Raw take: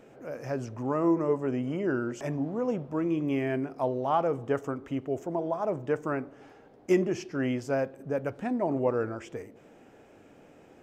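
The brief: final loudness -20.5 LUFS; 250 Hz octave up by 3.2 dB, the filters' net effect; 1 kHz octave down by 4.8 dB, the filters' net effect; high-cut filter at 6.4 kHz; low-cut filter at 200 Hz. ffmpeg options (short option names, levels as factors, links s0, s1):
-af "highpass=200,lowpass=6400,equalizer=f=250:t=o:g=6,equalizer=f=1000:t=o:g=-7,volume=2.66"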